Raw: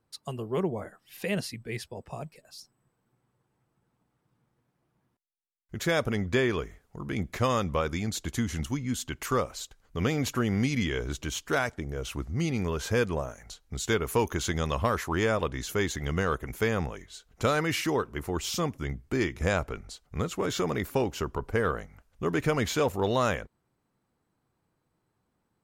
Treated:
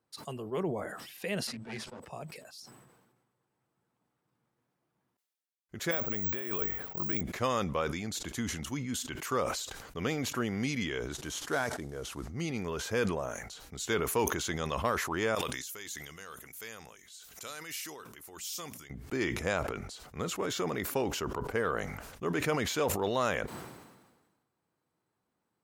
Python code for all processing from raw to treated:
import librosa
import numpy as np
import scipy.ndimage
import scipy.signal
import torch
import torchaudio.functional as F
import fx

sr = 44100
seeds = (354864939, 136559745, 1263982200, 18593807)

y = fx.chain(x, sr, fx.lower_of_two(delay_ms=7.9),
    fx.lowpass(hz=7700.0, slope=12),
    fx.peak_eq(hz=220.0, db=12.0, octaves=0.21), at=(1.47, 2.0))
y = fx.chain(y, sr, fx.lowpass(hz=4300.0, slope=12),
    fx.over_compress(threshold_db=-33.0, ratio=-1.0),
    fx.resample_bad(factor=2, down='filtered', up='zero_stuff'), at=(5.91, 7.21))
y = fx.chain(y, sr, fx.cvsd(bps=64000),
    fx.peak_eq(hz=2500.0, db=-5.5, octaves=0.59), at=(11.12, 12.25))
y = fx.chain(y, sr, fx.pre_emphasis(coefficient=0.9),
    fx.hum_notches(base_hz=60, count=4),
    fx.pre_swell(db_per_s=73.0), at=(15.35, 18.9))
y = fx.highpass(y, sr, hz=220.0, slope=6)
y = fx.sustainer(y, sr, db_per_s=44.0)
y = F.gain(torch.from_numpy(y), -3.5).numpy()